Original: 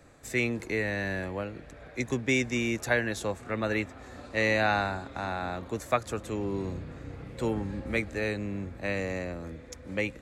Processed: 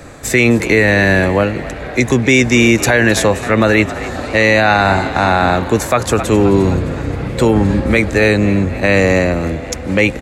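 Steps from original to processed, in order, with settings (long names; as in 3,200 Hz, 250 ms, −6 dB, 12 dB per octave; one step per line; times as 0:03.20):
echo with shifted repeats 262 ms, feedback 59%, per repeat +59 Hz, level −18.5 dB
boost into a limiter +22 dB
level −1 dB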